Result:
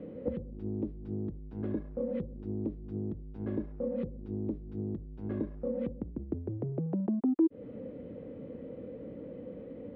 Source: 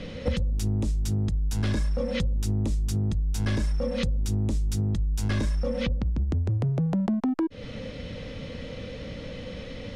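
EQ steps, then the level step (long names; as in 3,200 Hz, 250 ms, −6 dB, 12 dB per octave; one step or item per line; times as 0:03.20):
resonant band-pass 350 Hz, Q 2
high-frequency loss of the air 390 metres
+2.0 dB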